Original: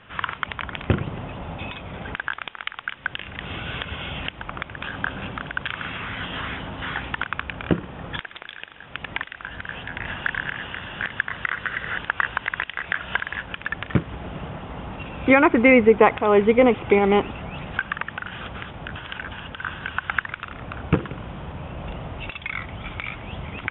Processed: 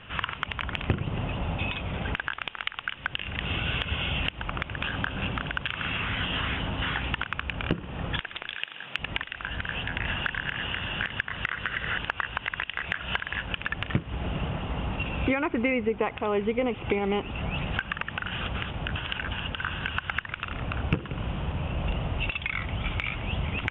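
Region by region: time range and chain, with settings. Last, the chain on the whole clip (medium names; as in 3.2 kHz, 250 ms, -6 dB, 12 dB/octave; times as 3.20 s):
8.55–8.99 s: high-pass 120 Hz 24 dB/octave + tilt EQ +2 dB/octave
whole clip: peaking EQ 2.8 kHz +7.5 dB 0.37 oct; compression 4:1, threshold -26 dBFS; bass shelf 120 Hz +8 dB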